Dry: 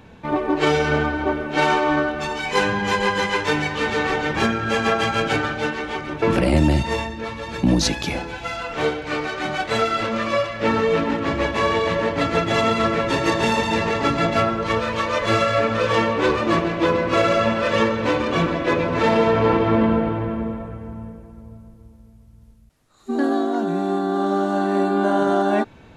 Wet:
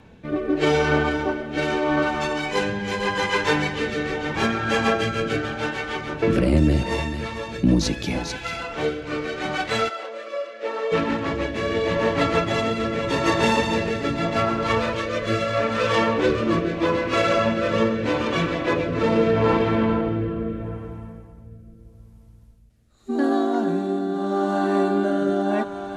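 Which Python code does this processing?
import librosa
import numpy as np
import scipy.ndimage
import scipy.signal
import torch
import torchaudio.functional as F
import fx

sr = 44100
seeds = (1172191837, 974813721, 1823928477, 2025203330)

y = x + 10.0 ** (-11.0 / 20.0) * np.pad(x, (int(444 * sr / 1000.0), 0))[:len(x)]
y = fx.rotary(y, sr, hz=0.8)
y = fx.ladder_highpass(y, sr, hz=410.0, resonance_pct=40, at=(9.88, 10.91), fade=0.02)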